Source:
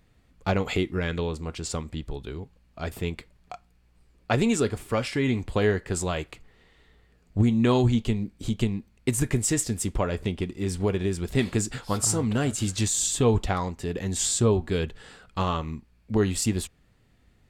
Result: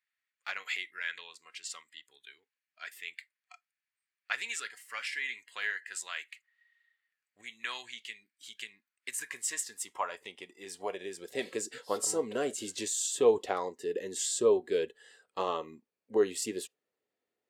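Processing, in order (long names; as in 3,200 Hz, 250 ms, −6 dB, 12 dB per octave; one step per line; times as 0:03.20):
noise reduction from a noise print of the clip's start 14 dB
high-pass filter sweep 1,800 Hz → 440 Hz, 0:08.37–0:11.98
level −7 dB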